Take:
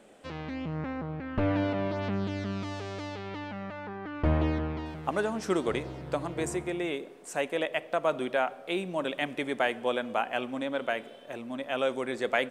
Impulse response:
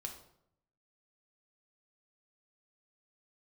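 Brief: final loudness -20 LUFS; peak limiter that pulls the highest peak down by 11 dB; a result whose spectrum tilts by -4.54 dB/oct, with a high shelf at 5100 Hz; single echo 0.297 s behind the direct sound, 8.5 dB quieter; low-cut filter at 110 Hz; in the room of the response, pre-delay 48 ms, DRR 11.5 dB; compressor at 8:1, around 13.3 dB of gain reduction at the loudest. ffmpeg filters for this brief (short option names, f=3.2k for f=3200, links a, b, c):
-filter_complex "[0:a]highpass=110,highshelf=f=5.1k:g=8.5,acompressor=threshold=-36dB:ratio=8,alimiter=level_in=7.5dB:limit=-24dB:level=0:latency=1,volume=-7.5dB,aecho=1:1:297:0.376,asplit=2[a][b];[1:a]atrim=start_sample=2205,adelay=48[c];[b][c]afir=irnorm=-1:irlink=0,volume=-9dB[d];[a][d]amix=inputs=2:normalize=0,volume=22dB"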